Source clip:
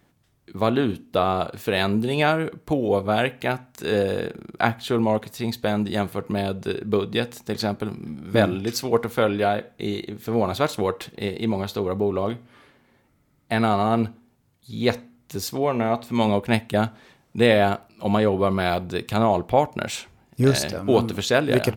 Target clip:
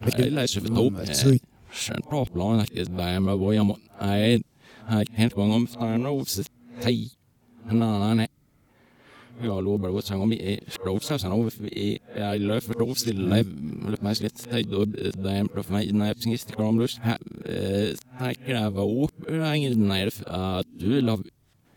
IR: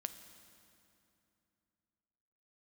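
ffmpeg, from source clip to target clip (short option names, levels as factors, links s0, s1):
-filter_complex "[0:a]areverse,acrossover=split=360|3000[s0][s1][s2];[s1]acompressor=threshold=0.01:ratio=3[s3];[s0][s3][s2]amix=inputs=3:normalize=0,volume=1.26"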